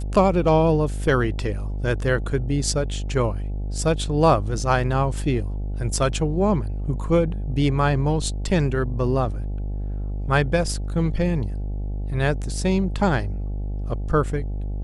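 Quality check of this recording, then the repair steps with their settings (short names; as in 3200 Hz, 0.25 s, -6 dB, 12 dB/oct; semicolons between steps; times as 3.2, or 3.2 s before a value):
buzz 50 Hz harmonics 17 -27 dBFS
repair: de-hum 50 Hz, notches 17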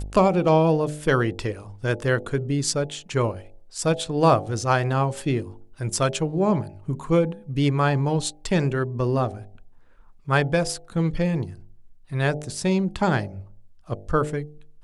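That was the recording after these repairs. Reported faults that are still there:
none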